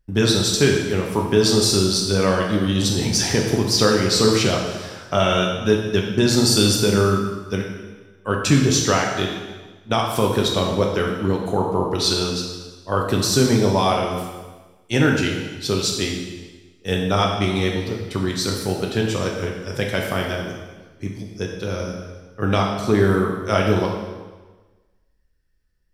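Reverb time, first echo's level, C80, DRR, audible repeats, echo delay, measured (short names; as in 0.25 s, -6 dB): 1.3 s, none, 5.5 dB, -0.5 dB, none, none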